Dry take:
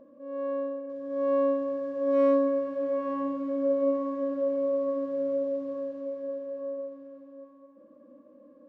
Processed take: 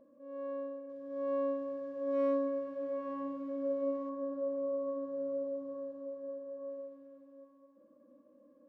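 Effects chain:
0:04.09–0:06.70: high shelf with overshoot 1,600 Hz −7.5 dB, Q 1.5
level −8.5 dB

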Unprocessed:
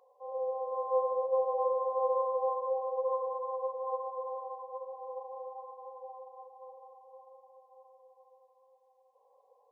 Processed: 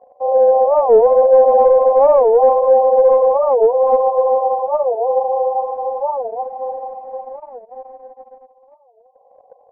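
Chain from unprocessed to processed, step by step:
in parallel at −1.5 dB: speech leveller within 4 dB 2 s
on the sum: leveller curve on the samples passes 2
low-pass with resonance 680 Hz, resonance Q 7.1
wow of a warped record 45 rpm, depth 250 cents
level +3.5 dB

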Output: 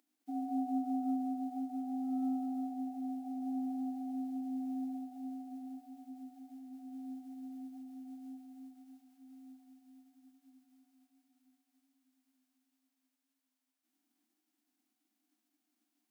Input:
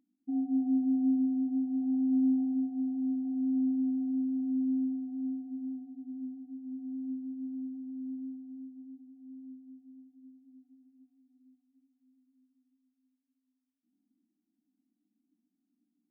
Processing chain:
spectral envelope flattened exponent 0.6
high-pass filter 350 Hz 24 dB per octave
reverb whose tail is shaped and stops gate 240 ms rising, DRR 5.5 dB
level +2.5 dB

